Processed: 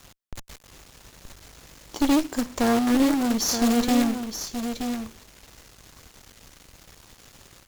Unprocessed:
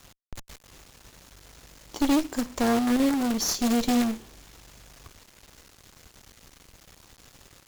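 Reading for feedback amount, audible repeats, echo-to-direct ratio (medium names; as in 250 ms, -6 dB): no regular repeats, 1, -8.0 dB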